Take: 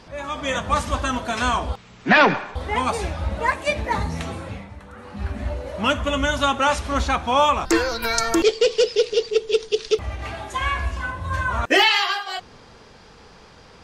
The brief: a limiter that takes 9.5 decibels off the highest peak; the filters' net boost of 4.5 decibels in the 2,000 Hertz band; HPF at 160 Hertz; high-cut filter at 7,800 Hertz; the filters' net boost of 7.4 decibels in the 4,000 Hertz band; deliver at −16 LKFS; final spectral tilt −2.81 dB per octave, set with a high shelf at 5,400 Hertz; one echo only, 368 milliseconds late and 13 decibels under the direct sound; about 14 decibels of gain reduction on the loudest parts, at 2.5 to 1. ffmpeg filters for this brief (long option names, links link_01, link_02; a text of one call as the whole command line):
ffmpeg -i in.wav -af "highpass=160,lowpass=7800,equalizer=frequency=2000:width_type=o:gain=3.5,equalizer=frequency=4000:width_type=o:gain=7,highshelf=frequency=5400:gain=4.5,acompressor=threshold=-29dB:ratio=2.5,alimiter=limit=-21dB:level=0:latency=1,aecho=1:1:368:0.224,volume=15dB" out.wav